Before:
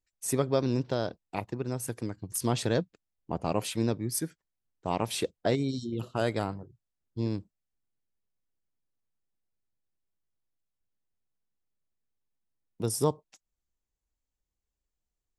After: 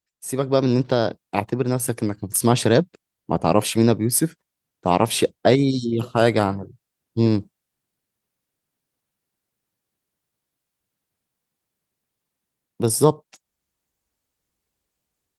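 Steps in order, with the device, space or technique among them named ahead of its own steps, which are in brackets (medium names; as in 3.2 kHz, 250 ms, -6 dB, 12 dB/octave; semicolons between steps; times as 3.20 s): 4.18–4.88 s: dynamic bell 210 Hz, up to +5 dB, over -50 dBFS, Q 3.3; video call (high-pass 100 Hz 12 dB/octave; level rider gain up to 14 dB; Opus 32 kbps 48 kHz)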